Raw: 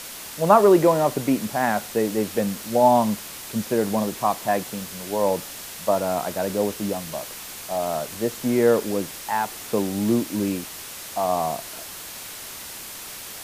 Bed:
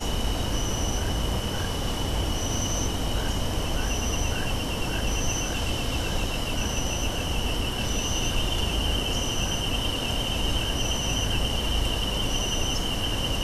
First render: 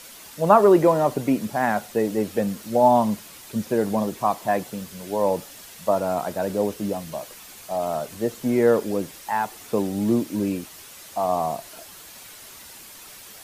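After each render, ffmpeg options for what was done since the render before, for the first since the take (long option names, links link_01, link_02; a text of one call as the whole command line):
ffmpeg -i in.wav -af "afftdn=noise_reduction=8:noise_floor=-37" out.wav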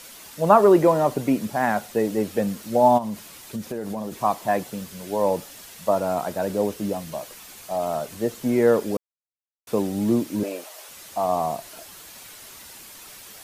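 ffmpeg -i in.wav -filter_complex "[0:a]asplit=3[link_01][link_02][link_03];[link_01]afade=type=out:start_time=2.97:duration=0.02[link_04];[link_02]acompressor=threshold=-26dB:ratio=6:attack=3.2:release=140:knee=1:detection=peak,afade=type=in:start_time=2.97:duration=0.02,afade=type=out:start_time=4.11:duration=0.02[link_05];[link_03]afade=type=in:start_time=4.11:duration=0.02[link_06];[link_04][link_05][link_06]amix=inputs=3:normalize=0,asettb=1/sr,asplit=3[link_07][link_08][link_09];[link_07]atrim=end=10.434[link_10];[link_08]atrim=start=10.43:end=10.89,asetpts=PTS-STARTPTS,afade=type=in:duration=0.004:curve=qsin,afade=type=out:start_time=0.456:duration=0.004:curve=qsin,highpass=frequency=600:width_type=q:width=4.3[link_11];[link_09]atrim=start=10.886[link_12];[link_10][link_11]acrossfade=duration=0.004:curve1=hsin:curve2=qsin[link_13];[link_13][link_12]acrossfade=duration=0.004:curve1=qsin:curve2=hsin,asplit=3[link_14][link_15][link_16];[link_14]atrim=end=8.97,asetpts=PTS-STARTPTS,afade=type=out:start_time=8.966:duration=0.004:curve=hsin[link_17];[link_15]atrim=start=8.97:end=9.67,asetpts=PTS-STARTPTS,volume=0[link_18];[link_16]atrim=start=9.67,asetpts=PTS-STARTPTS,afade=type=in:duration=0.004:curve=hsin[link_19];[link_17][link_18][link_19]concat=n=3:v=0:a=1" out.wav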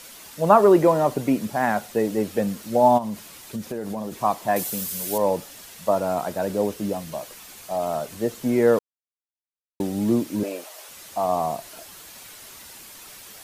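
ffmpeg -i in.wav -filter_complex "[0:a]asettb=1/sr,asplit=3[link_01][link_02][link_03];[link_01]atrim=end=4.564[link_04];[link_02]atrim=start=4.56:end=5.18,asetpts=PTS-STARTPTS,afade=type=in:duration=0.004:curve=qsin,afade=type=out:start_time=0.616:duration=0.004:curve=qsin,aemphasis=mode=production:type=75kf[link_05];[link_03]atrim=start=5.176[link_06];[link_04][link_05]acrossfade=duration=0.004:curve1=hsin:curve2=qsin[link_07];[link_07][link_06]acrossfade=duration=0.004:curve1=qsin:curve2=hsin,asplit=3[link_08][link_09][link_10];[link_08]atrim=end=8.79,asetpts=PTS-STARTPTS,afade=type=out:start_time=8.786:duration=0.004:curve=hsin[link_11];[link_09]atrim=start=8.79:end=9.8,asetpts=PTS-STARTPTS,volume=0[link_12];[link_10]atrim=start=9.8,asetpts=PTS-STARTPTS,afade=type=in:duration=0.004:curve=hsin[link_13];[link_11][link_12][link_13]concat=n=3:v=0:a=1" out.wav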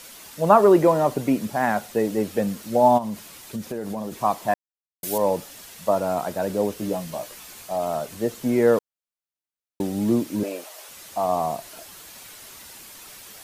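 ffmpeg -i in.wav -filter_complex "[0:a]asettb=1/sr,asplit=3[link_01][link_02][link_03];[link_01]atrim=end=6.754[link_04];[link_02]atrim=start=6.75:end=7.63,asetpts=PTS-STARTPTS,afade=type=in:duration=0.004:curve=qsin,afade=type=out:start_time=0.876:duration=0.004:curve=qsin,asplit=2[link_05][link_06];[link_06]adelay=17,volume=-6dB[link_07];[link_05][link_07]amix=inputs=2:normalize=0,atrim=end_sample=38808[link_08];[link_03]atrim=start=7.626[link_09];[link_04][link_08]acrossfade=duration=0.004:curve1=hsin:curve2=qsin[link_10];[link_10][link_09]acrossfade=duration=0.004:curve1=qsin:curve2=hsin,asplit=3[link_11][link_12][link_13];[link_11]atrim=end=4.54,asetpts=PTS-STARTPTS,afade=type=out:start_time=4.536:duration=0.004:curve=hsin[link_14];[link_12]atrim=start=4.54:end=5.03,asetpts=PTS-STARTPTS,volume=0[link_15];[link_13]atrim=start=5.03,asetpts=PTS-STARTPTS,afade=type=in:duration=0.004:curve=hsin[link_16];[link_14][link_15][link_16]concat=n=3:v=0:a=1" out.wav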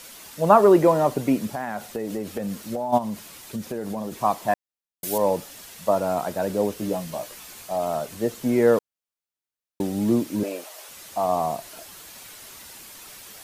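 ffmpeg -i in.wav -filter_complex "[0:a]asplit=3[link_01][link_02][link_03];[link_01]afade=type=out:start_time=1.51:duration=0.02[link_04];[link_02]acompressor=threshold=-24dB:ratio=12:attack=3.2:release=140:knee=1:detection=peak,afade=type=in:start_time=1.51:duration=0.02,afade=type=out:start_time=2.92:duration=0.02[link_05];[link_03]afade=type=in:start_time=2.92:duration=0.02[link_06];[link_04][link_05][link_06]amix=inputs=3:normalize=0" out.wav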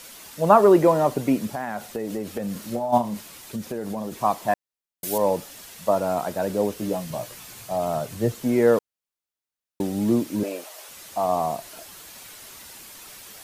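ffmpeg -i in.wav -filter_complex "[0:a]asettb=1/sr,asplit=3[link_01][link_02][link_03];[link_01]atrim=end=2.524[link_04];[link_02]atrim=start=2.52:end=3.21,asetpts=PTS-STARTPTS,afade=type=in:duration=0.004:curve=qsin,afade=type=out:start_time=0.686:duration=0.004:curve=qsin,asplit=2[link_05][link_06];[link_06]adelay=34,volume=-6dB[link_07];[link_05][link_07]amix=inputs=2:normalize=0,atrim=end_sample=30429[link_08];[link_03]atrim=start=3.206[link_09];[link_04][link_08]acrossfade=duration=0.004:curve1=hsin:curve2=qsin[link_10];[link_10][link_09]acrossfade=duration=0.004:curve1=qsin:curve2=hsin,asettb=1/sr,asplit=3[link_11][link_12][link_13];[link_11]atrim=end=7.104[link_14];[link_12]atrim=start=7.1:end=8.32,asetpts=PTS-STARTPTS,afade=type=in:duration=0.004:curve=qsin,afade=type=out:start_time=1.216:duration=0.004:curve=qsin,equalizer=frequency=120:width_type=o:width=0.77:gain=12[link_15];[link_13]atrim=start=8.316[link_16];[link_14][link_15]acrossfade=duration=0.004:curve1=hsin:curve2=qsin[link_17];[link_17][link_16]acrossfade=duration=0.004:curve1=qsin:curve2=hsin" out.wav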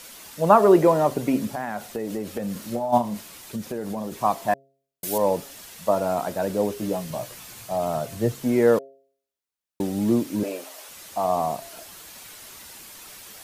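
ffmpeg -i in.wav -af "bandreject=frequency=135.8:width_type=h:width=4,bandreject=frequency=271.6:width_type=h:width=4,bandreject=frequency=407.4:width_type=h:width=4,bandreject=frequency=543.2:width_type=h:width=4,bandreject=frequency=679:width_type=h:width=4" out.wav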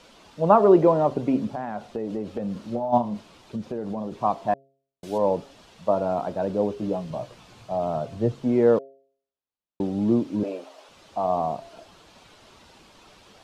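ffmpeg -i in.wav -af "lowpass=3000,equalizer=frequency=1900:width_type=o:width=0.98:gain=-9" out.wav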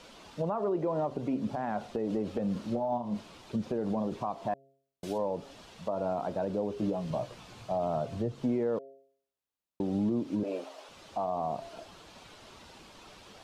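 ffmpeg -i in.wav -af "acompressor=threshold=-26dB:ratio=2,alimiter=limit=-22dB:level=0:latency=1:release=162" out.wav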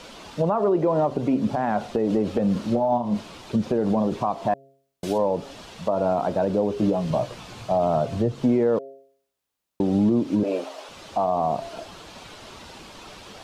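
ffmpeg -i in.wav -af "volume=9.5dB" out.wav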